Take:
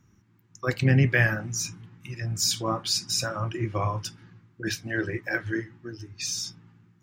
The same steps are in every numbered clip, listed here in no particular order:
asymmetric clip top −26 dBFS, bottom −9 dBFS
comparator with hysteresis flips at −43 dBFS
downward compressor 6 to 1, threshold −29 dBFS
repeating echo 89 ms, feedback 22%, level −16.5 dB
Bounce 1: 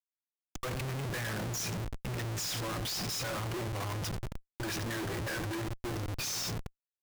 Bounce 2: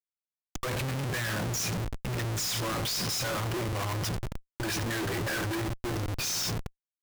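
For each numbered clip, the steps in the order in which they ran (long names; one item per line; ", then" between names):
repeating echo, then downward compressor, then asymmetric clip, then comparator with hysteresis
asymmetric clip, then repeating echo, then comparator with hysteresis, then downward compressor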